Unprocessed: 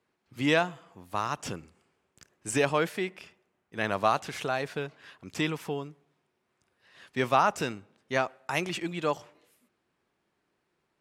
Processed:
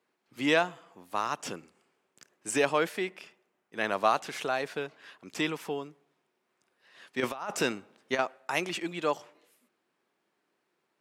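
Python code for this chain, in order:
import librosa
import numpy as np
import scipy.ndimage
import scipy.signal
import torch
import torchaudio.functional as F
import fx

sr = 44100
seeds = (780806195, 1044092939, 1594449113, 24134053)

y = scipy.signal.sosfilt(scipy.signal.butter(2, 230.0, 'highpass', fs=sr, output='sos'), x)
y = fx.over_compress(y, sr, threshold_db=-29.0, ratio=-0.5, at=(7.2, 8.19))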